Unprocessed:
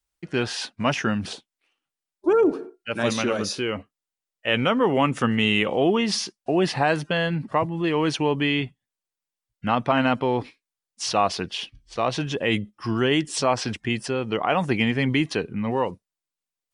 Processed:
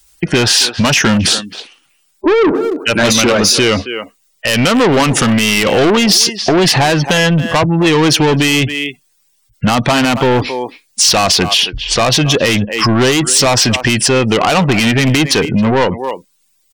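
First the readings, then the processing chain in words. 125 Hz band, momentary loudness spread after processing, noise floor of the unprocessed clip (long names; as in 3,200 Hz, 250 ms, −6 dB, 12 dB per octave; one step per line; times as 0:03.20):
+13.5 dB, 8 LU, below −85 dBFS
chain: low-shelf EQ 120 Hz +4 dB
gate on every frequency bin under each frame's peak −30 dB strong
far-end echo of a speakerphone 270 ms, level −18 dB
soft clipping −23.5 dBFS, distortion −8 dB
downward compressor 2.5 to 1, threshold −37 dBFS, peak gain reduction 8 dB
high-shelf EQ 3,100 Hz +11.5 dB
boost into a limiter +24.5 dB
level −1 dB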